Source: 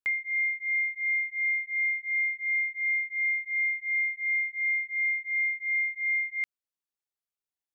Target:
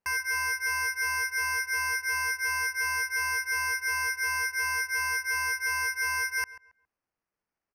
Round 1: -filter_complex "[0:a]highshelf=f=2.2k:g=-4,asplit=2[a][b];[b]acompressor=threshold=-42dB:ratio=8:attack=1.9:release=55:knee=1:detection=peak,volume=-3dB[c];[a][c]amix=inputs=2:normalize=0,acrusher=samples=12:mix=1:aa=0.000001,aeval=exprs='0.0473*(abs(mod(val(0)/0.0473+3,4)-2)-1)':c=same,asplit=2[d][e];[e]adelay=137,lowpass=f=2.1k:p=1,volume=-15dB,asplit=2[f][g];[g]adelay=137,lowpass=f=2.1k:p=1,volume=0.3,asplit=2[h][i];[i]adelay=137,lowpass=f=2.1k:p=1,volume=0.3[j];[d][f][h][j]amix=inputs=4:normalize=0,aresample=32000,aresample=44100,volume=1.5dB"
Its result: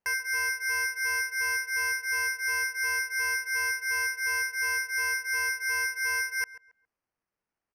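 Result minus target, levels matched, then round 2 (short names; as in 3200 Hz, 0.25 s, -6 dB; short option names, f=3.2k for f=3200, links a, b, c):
compressor: peak gain reduction +9 dB
-filter_complex "[0:a]highshelf=f=2.2k:g=-4,asplit=2[a][b];[b]acompressor=threshold=-31.5dB:ratio=8:attack=1.9:release=55:knee=1:detection=peak,volume=-3dB[c];[a][c]amix=inputs=2:normalize=0,acrusher=samples=12:mix=1:aa=0.000001,aeval=exprs='0.0473*(abs(mod(val(0)/0.0473+3,4)-2)-1)':c=same,asplit=2[d][e];[e]adelay=137,lowpass=f=2.1k:p=1,volume=-15dB,asplit=2[f][g];[g]adelay=137,lowpass=f=2.1k:p=1,volume=0.3,asplit=2[h][i];[i]adelay=137,lowpass=f=2.1k:p=1,volume=0.3[j];[d][f][h][j]amix=inputs=4:normalize=0,aresample=32000,aresample=44100,volume=1.5dB"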